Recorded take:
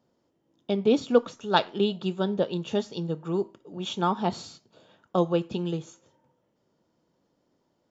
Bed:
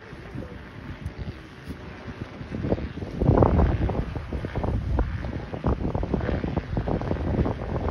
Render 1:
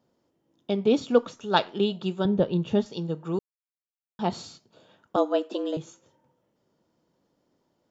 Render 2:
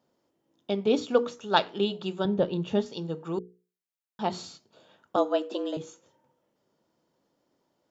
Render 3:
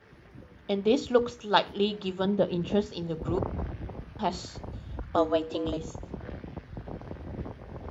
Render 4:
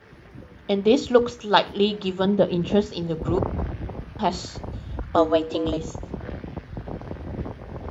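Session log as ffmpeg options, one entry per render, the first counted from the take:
-filter_complex "[0:a]asettb=1/sr,asplit=3[a][b][c];[a]atrim=end=2.254[d];[b]atrim=start=2.25:end=2.86,asetpts=PTS-STARTPTS,afade=t=in:d=0.004:c=qsin,afade=t=out:st=0.606:d=0.004:c=qsin,aemphasis=mode=reproduction:type=bsi[e];[c]atrim=start=2.856[f];[d][e]acrossfade=d=0.004:c1=hsin:c2=qsin[g];[g][f]acrossfade=d=0.004:c1=qsin:c2=hsin,asettb=1/sr,asplit=3[h][i][j];[h]atrim=end=5.164[k];[i]atrim=start=5.16:end=5.77,asetpts=PTS-STARTPTS,afade=t=in:d=0.004:c=qsin,afade=t=out:st=0.606:d=0.004:c=qsin,afreqshift=140[l];[j]atrim=start=5.766[m];[k][l]acrossfade=d=0.004:c1=hsin:c2=qsin[n];[n][m]acrossfade=d=0.004:c1=qsin:c2=hsin,asplit=3[o][p][q];[o]atrim=end=3.39,asetpts=PTS-STARTPTS,afade=t=out:st=3.386:d=0.004:c=hsin[r];[p]atrim=start=3.39:end=4.19,asetpts=PTS-STARTPTS,volume=0[s];[q]atrim=start=4.19,asetpts=PTS-STARTPTS,afade=t=in:d=0.004:c=hsin[t];[r][s][t]concat=n=3:v=0:a=1"
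-af "lowshelf=f=190:g=-7,bandreject=f=60:t=h:w=6,bandreject=f=120:t=h:w=6,bandreject=f=180:t=h:w=6,bandreject=f=240:t=h:w=6,bandreject=f=300:t=h:w=6,bandreject=f=360:t=h:w=6,bandreject=f=420:t=h:w=6,bandreject=f=480:t=h:w=6"
-filter_complex "[1:a]volume=-13.5dB[a];[0:a][a]amix=inputs=2:normalize=0"
-af "volume=6dB,alimiter=limit=-3dB:level=0:latency=1"

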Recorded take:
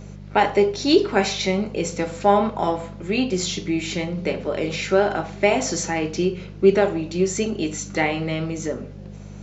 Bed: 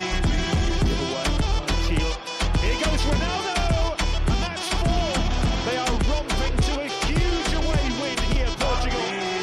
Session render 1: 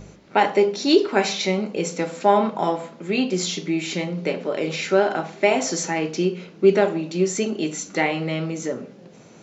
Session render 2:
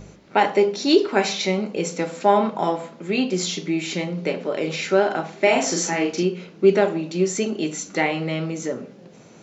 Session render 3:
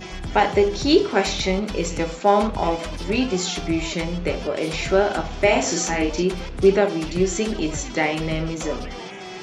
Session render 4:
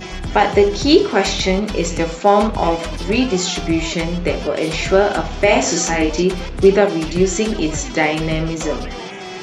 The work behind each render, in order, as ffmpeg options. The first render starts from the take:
-af "bandreject=f=50:t=h:w=4,bandreject=f=100:t=h:w=4,bandreject=f=150:t=h:w=4,bandreject=f=200:t=h:w=4"
-filter_complex "[0:a]asettb=1/sr,asplit=3[a][b][c];[a]atrim=end=5.394[d];[b]atrim=start=5.39:end=6.23,asetpts=PTS-STARTPTS,afade=t=in:d=0.004:c=qsin,afade=t=out:st=0.836:d=0.004:c=qsin,asplit=2[e][f];[f]adelay=41,volume=-2dB[g];[e][g]amix=inputs=2:normalize=0,atrim=end_sample=37044[h];[c]atrim=start=6.226[i];[d][h]acrossfade=d=0.004:c1=hsin:c2=qsin[j];[j][i]acrossfade=d=0.004:c1=qsin:c2=hsin"
-filter_complex "[1:a]volume=-9.5dB[a];[0:a][a]amix=inputs=2:normalize=0"
-af "volume=5dB,alimiter=limit=-1dB:level=0:latency=1"

